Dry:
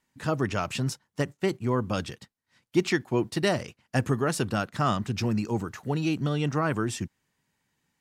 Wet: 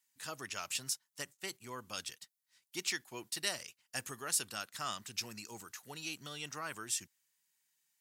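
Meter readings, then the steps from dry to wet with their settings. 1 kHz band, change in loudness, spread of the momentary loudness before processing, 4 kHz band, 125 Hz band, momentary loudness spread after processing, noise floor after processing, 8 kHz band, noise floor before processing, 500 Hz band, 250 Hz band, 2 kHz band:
-13.5 dB, -11.5 dB, 6 LU, -3.0 dB, -26.5 dB, 12 LU, -85 dBFS, +2.5 dB, -81 dBFS, -20.5 dB, -24.0 dB, -9.0 dB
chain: pre-emphasis filter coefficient 0.97; trim +2.5 dB

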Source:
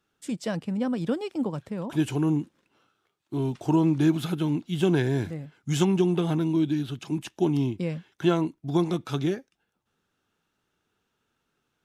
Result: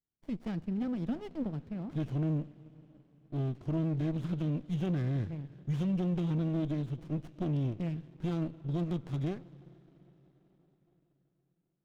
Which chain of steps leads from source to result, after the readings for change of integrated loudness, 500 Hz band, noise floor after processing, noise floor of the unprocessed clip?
-8.0 dB, -12.5 dB, -78 dBFS, -78 dBFS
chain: gate -53 dBFS, range -13 dB; peaking EQ 770 Hz -13.5 dB 2.8 oct; peak limiter -24 dBFS, peak gain reduction 6.5 dB; distance through air 230 m; plate-style reverb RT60 4.8 s, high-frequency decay 0.85×, DRR 17.5 dB; sliding maximum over 33 samples

